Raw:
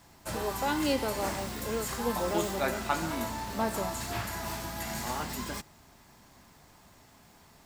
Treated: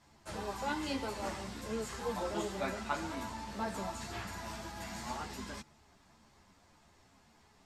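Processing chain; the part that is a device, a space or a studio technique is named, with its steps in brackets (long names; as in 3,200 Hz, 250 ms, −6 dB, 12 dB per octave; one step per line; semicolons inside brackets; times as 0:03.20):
string-machine ensemble chorus (string-ensemble chorus; low-pass filter 7,800 Hz 12 dB per octave)
level −3.5 dB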